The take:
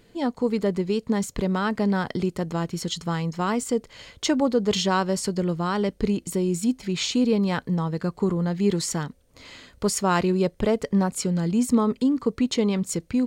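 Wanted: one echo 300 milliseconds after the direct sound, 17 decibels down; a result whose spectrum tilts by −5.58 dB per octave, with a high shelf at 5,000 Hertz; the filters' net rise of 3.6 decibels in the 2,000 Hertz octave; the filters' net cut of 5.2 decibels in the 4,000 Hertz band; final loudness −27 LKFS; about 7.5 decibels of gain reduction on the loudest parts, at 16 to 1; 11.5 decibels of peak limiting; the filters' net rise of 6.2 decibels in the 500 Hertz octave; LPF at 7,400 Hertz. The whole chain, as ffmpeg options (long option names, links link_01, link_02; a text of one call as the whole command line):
ffmpeg -i in.wav -af "lowpass=7400,equalizer=frequency=500:width_type=o:gain=7.5,equalizer=frequency=2000:width_type=o:gain=6.5,equalizer=frequency=4000:width_type=o:gain=-7.5,highshelf=frequency=5000:gain=-3.5,acompressor=threshold=-19dB:ratio=16,alimiter=limit=-22dB:level=0:latency=1,aecho=1:1:300:0.141,volume=4dB" out.wav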